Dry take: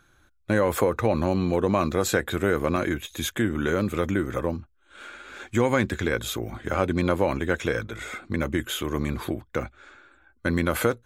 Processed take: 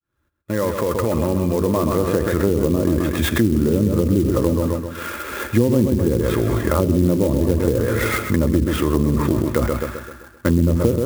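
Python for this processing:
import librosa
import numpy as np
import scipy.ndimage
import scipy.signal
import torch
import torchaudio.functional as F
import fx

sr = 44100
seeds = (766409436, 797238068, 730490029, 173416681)

p1 = fx.fade_in_head(x, sr, length_s=3.41)
p2 = fx.air_absorb(p1, sr, metres=190.0)
p3 = fx.notch_comb(p2, sr, f0_hz=760.0)
p4 = fx.echo_filtered(p3, sr, ms=130, feedback_pct=45, hz=4500.0, wet_db=-7.0)
p5 = fx.env_lowpass_down(p4, sr, base_hz=390.0, full_db=-21.0)
p6 = fx.over_compress(p5, sr, threshold_db=-36.0, ratio=-1.0)
p7 = p5 + F.gain(torch.from_numpy(p6), -1.0).numpy()
p8 = fx.peak_eq(p7, sr, hz=68.0, db=6.0, octaves=0.87)
p9 = fx.clock_jitter(p8, sr, seeds[0], jitter_ms=0.041)
y = F.gain(torch.from_numpy(p9), 7.5).numpy()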